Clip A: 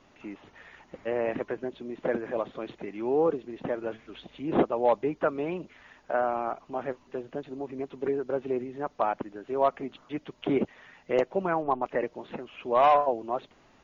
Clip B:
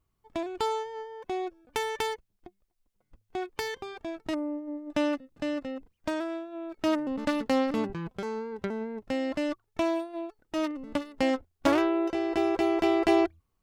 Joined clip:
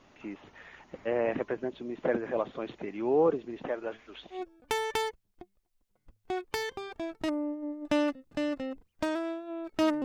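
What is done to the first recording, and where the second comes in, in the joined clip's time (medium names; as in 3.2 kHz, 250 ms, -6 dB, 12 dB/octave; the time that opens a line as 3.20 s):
clip A
3.63–4.44 s: peaking EQ 140 Hz -10.5 dB 2.3 oct
4.37 s: go over to clip B from 1.42 s, crossfade 0.14 s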